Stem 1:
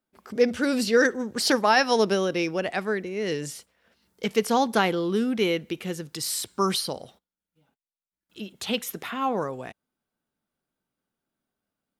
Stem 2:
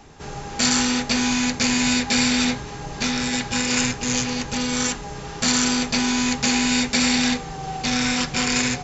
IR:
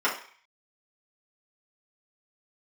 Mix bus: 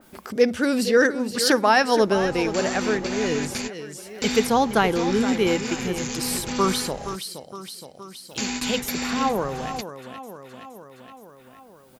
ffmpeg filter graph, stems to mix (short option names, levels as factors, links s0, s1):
-filter_complex "[0:a]volume=1.33,asplit=3[s0][s1][s2];[s1]volume=0.282[s3];[1:a]alimiter=limit=0.188:level=0:latency=1:release=177,adelay=1950,volume=0.668[s4];[s2]apad=whole_len=475723[s5];[s4][s5]sidechaingate=range=0.00398:threshold=0.00447:ratio=16:detection=peak[s6];[s3]aecho=0:1:469|938|1407|1876|2345:1|0.37|0.137|0.0507|0.0187[s7];[s0][s6][s7]amix=inputs=3:normalize=0,highshelf=f=6700:g=5,acompressor=mode=upward:threshold=0.0316:ratio=2.5,adynamicequalizer=threshold=0.0178:dfrequency=2500:dqfactor=0.7:tfrequency=2500:tqfactor=0.7:attack=5:release=100:ratio=0.375:range=4:mode=cutabove:tftype=highshelf"